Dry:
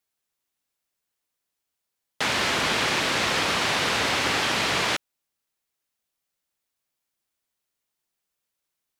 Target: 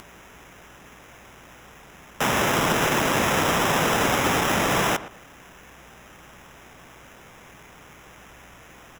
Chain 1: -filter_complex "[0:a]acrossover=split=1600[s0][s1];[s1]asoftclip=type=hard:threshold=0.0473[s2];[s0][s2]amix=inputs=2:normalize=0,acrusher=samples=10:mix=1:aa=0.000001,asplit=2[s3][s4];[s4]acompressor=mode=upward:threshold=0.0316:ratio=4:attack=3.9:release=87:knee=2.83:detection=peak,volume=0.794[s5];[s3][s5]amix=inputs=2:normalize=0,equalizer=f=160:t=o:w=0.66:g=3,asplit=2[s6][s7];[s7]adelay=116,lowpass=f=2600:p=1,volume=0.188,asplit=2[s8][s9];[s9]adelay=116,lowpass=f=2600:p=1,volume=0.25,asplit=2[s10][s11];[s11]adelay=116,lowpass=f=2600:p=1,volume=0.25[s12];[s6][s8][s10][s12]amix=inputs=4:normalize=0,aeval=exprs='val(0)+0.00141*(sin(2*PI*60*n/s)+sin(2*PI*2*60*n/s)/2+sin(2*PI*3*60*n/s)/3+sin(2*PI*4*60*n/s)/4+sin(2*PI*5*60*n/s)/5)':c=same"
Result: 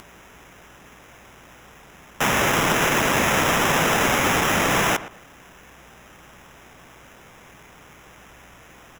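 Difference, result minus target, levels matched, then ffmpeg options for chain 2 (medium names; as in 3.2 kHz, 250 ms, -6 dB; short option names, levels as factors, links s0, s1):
hard clipper: distortion -5 dB
-filter_complex "[0:a]acrossover=split=1600[s0][s1];[s1]asoftclip=type=hard:threshold=0.02[s2];[s0][s2]amix=inputs=2:normalize=0,acrusher=samples=10:mix=1:aa=0.000001,asplit=2[s3][s4];[s4]acompressor=mode=upward:threshold=0.0316:ratio=4:attack=3.9:release=87:knee=2.83:detection=peak,volume=0.794[s5];[s3][s5]amix=inputs=2:normalize=0,equalizer=f=160:t=o:w=0.66:g=3,asplit=2[s6][s7];[s7]adelay=116,lowpass=f=2600:p=1,volume=0.188,asplit=2[s8][s9];[s9]adelay=116,lowpass=f=2600:p=1,volume=0.25,asplit=2[s10][s11];[s11]adelay=116,lowpass=f=2600:p=1,volume=0.25[s12];[s6][s8][s10][s12]amix=inputs=4:normalize=0,aeval=exprs='val(0)+0.00141*(sin(2*PI*60*n/s)+sin(2*PI*2*60*n/s)/2+sin(2*PI*3*60*n/s)/3+sin(2*PI*4*60*n/s)/4+sin(2*PI*5*60*n/s)/5)':c=same"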